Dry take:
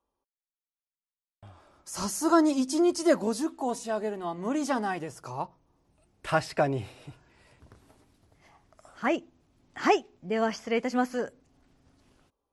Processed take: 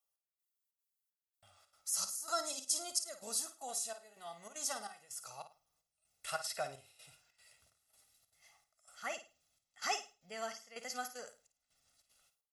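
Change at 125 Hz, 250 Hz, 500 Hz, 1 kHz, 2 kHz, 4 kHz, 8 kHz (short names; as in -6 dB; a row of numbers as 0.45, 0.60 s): -25.5, -30.5, -18.0, -13.0, -11.5, -2.5, +2.0 dB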